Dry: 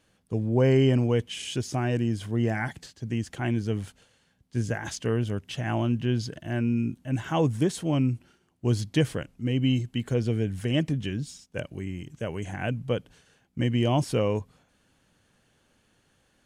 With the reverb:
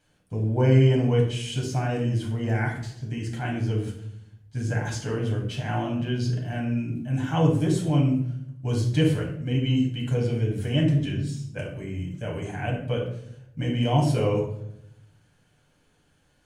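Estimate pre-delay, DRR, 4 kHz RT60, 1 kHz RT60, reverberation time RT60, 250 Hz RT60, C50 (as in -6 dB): 7 ms, -2.5 dB, 0.50 s, 0.65 s, 0.75 s, 1.1 s, 5.0 dB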